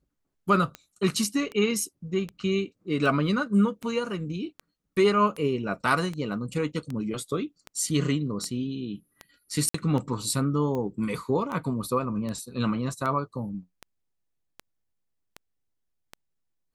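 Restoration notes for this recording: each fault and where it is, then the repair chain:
tick 78 rpm -21 dBFS
9.69–9.74 s: dropout 54 ms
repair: de-click; interpolate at 9.69 s, 54 ms

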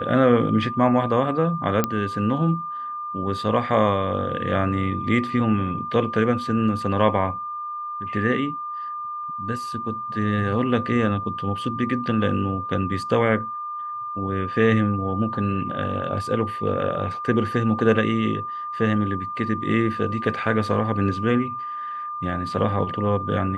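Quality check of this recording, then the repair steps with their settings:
whine 1.2 kHz -28 dBFS
1.84 s: pop -6 dBFS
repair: de-click; band-stop 1.2 kHz, Q 30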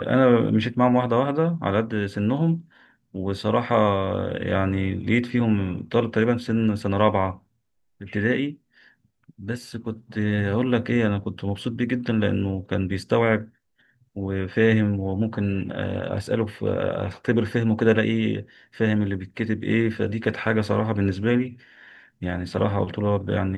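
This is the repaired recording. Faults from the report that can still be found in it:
nothing left

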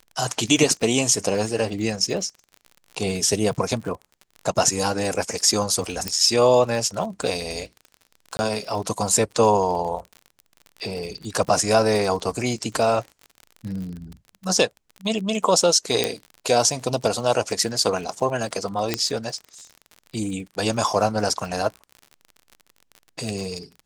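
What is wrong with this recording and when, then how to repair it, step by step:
crackle 46 per s -31 dBFS
6.08 s: pop -7 dBFS
8.37–8.39 s: dropout 20 ms
16.04 s: pop -4 dBFS
18.94 s: pop -5 dBFS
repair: de-click; interpolate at 8.37 s, 20 ms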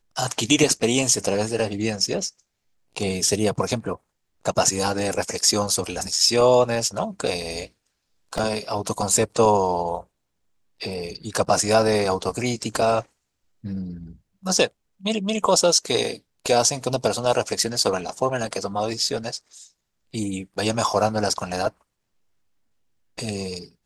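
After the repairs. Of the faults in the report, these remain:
18.94 s: pop

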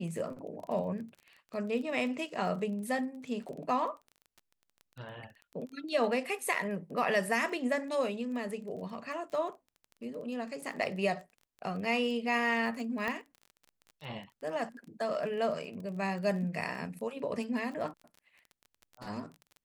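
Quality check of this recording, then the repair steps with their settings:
crackle 21 per s -41 dBFS
13.08 s: pop -22 dBFS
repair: de-click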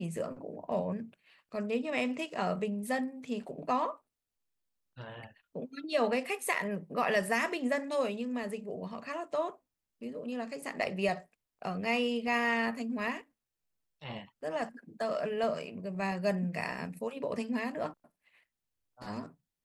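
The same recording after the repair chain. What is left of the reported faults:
nothing left

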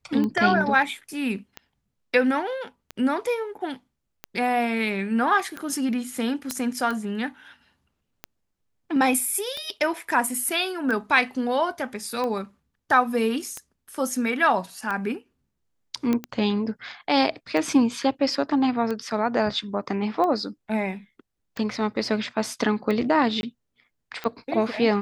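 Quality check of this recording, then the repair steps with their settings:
tick 45 rpm -17 dBFS
6.51 s: pop -11 dBFS
16.13 s: pop -12 dBFS
23.41–23.43 s: dropout 21 ms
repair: de-click; interpolate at 23.41 s, 21 ms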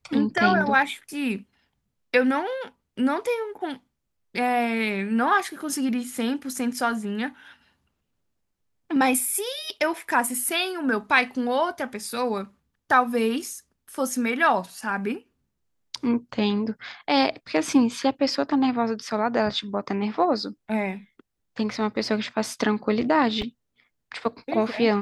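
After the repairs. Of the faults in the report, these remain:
6.51 s: pop

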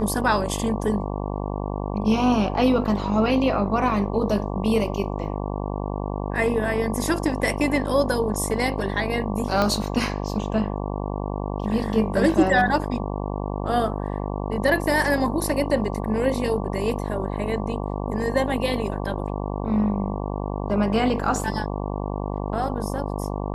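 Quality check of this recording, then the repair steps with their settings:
buzz 50 Hz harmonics 23 -28 dBFS
9.62 s: pop -9 dBFS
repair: de-click; de-hum 50 Hz, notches 23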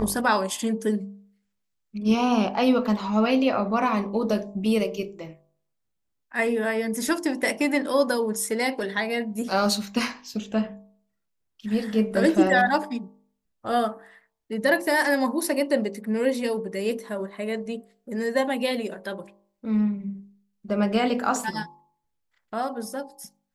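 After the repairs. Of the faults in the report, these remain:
9.62 s: pop

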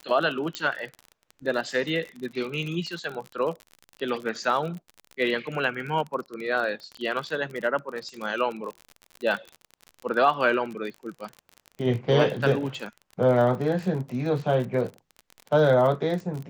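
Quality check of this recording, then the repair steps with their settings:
crackle 40 per s -31 dBFS
0.55 s: pop -13 dBFS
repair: de-click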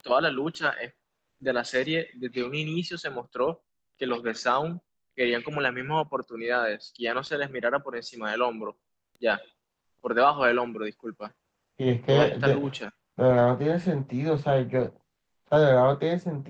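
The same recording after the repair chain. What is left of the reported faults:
0.55 s: pop

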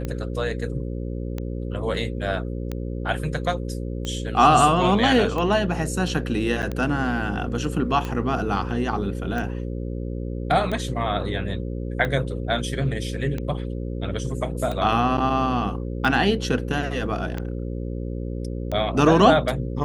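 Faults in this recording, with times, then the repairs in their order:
buzz 60 Hz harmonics 9 -29 dBFS
tick 45 rpm -16 dBFS
6.62–6.63 s: dropout 8.4 ms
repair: de-click; de-hum 60 Hz, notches 9; interpolate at 6.62 s, 8.4 ms

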